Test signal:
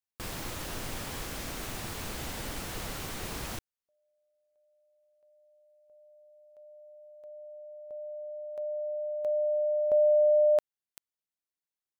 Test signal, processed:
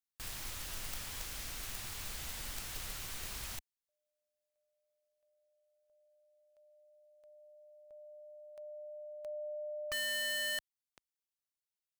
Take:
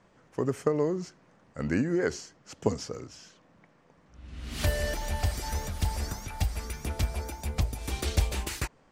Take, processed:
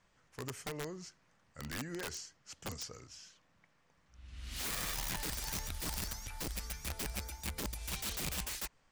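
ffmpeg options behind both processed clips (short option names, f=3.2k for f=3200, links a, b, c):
-af "equalizer=f=330:w=0.31:g=-14,aeval=exprs='(mod(35.5*val(0)+1,2)-1)/35.5':c=same,volume=-2dB"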